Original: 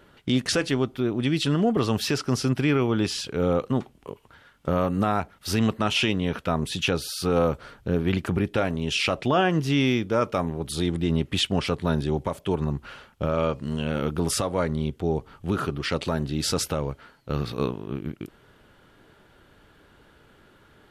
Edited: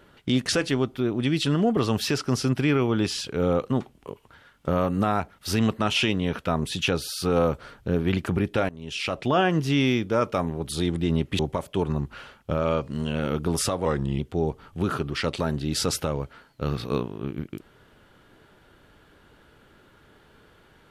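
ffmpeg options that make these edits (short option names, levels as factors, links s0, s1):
-filter_complex "[0:a]asplit=5[s0][s1][s2][s3][s4];[s0]atrim=end=8.69,asetpts=PTS-STARTPTS,afade=t=out:st=8.686:d=0.004:c=hsin:silence=0.125893[s5];[s1]atrim=start=8.69:end=11.392,asetpts=PTS-STARTPTS,afade=t=in:d=0.67:silence=0.125893[s6];[s2]atrim=start=12.108:end=14.574[s7];[s3]atrim=start=14.57:end=14.87,asetpts=PTS-STARTPTS,asetrate=38808,aresample=44100,atrim=end_sample=15034,asetpts=PTS-STARTPTS[s8];[s4]atrim=start=14.866[s9];[s5][s6]concat=n=2:v=0:a=1[s10];[s10][s7]acrossfade=d=0.004:c1=hsin:c2=hsin[s11];[s11][s8]acrossfade=d=0.004:c1=hsin:c2=hsin[s12];[s12][s9]acrossfade=d=0.004:c1=hsin:c2=hsin"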